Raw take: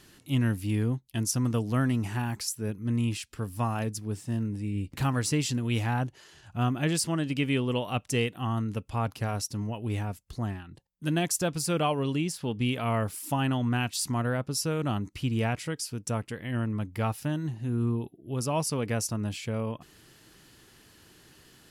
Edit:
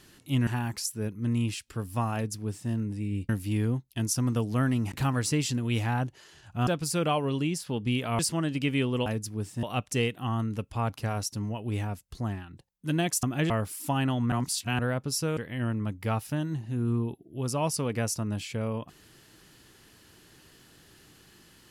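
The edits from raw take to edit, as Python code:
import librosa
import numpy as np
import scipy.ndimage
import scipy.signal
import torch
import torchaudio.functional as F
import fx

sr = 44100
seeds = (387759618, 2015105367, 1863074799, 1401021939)

y = fx.edit(x, sr, fx.move(start_s=0.47, length_s=1.63, to_s=4.92),
    fx.duplicate(start_s=3.77, length_s=0.57, to_s=7.81),
    fx.swap(start_s=6.67, length_s=0.27, other_s=11.41, other_length_s=1.52),
    fx.reverse_span(start_s=13.75, length_s=0.47),
    fx.cut(start_s=14.8, length_s=1.5), tone=tone)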